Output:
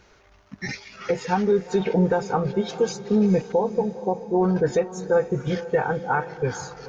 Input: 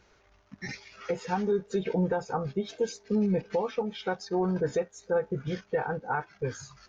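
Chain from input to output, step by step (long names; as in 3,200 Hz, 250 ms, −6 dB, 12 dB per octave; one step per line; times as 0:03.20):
0:03.52–0:04.41: linear-phase brick-wall low-pass 1,100 Hz
on a send: feedback delay with all-pass diffusion 456 ms, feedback 48%, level −14 dB
on the sum: level +7 dB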